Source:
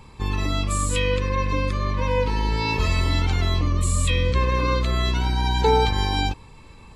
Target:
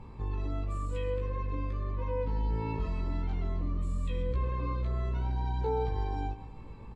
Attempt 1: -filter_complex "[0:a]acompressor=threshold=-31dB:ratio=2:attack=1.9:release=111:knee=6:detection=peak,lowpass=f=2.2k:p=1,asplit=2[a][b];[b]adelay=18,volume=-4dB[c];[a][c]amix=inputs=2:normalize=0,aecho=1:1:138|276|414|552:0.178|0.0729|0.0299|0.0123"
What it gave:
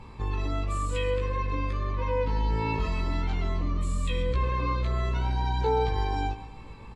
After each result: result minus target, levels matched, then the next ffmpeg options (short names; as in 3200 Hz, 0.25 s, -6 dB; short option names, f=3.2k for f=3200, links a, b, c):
2000 Hz band +7.0 dB; compressor: peak gain reduction -4 dB
-filter_complex "[0:a]acompressor=threshold=-31dB:ratio=2:attack=1.9:release=111:knee=6:detection=peak,lowpass=f=620:p=1,asplit=2[a][b];[b]adelay=18,volume=-4dB[c];[a][c]amix=inputs=2:normalize=0,aecho=1:1:138|276|414|552:0.178|0.0729|0.0299|0.0123"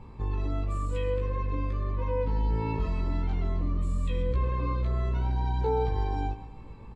compressor: peak gain reduction -4 dB
-filter_complex "[0:a]acompressor=threshold=-38.5dB:ratio=2:attack=1.9:release=111:knee=6:detection=peak,lowpass=f=620:p=1,asplit=2[a][b];[b]adelay=18,volume=-4dB[c];[a][c]amix=inputs=2:normalize=0,aecho=1:1:138|276|414|552:0.178|0.0729|0.0299|0.0123"